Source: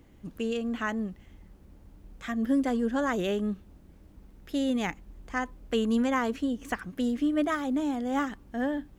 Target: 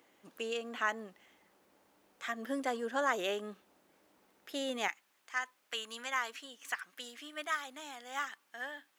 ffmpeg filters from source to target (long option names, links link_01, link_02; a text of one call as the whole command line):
ffmpeg -i in.wav -af "asetnsamples=nb_out_samples=441:pad=0,asendcmd='4.88 highpass f 1400',highpass=590" out.wav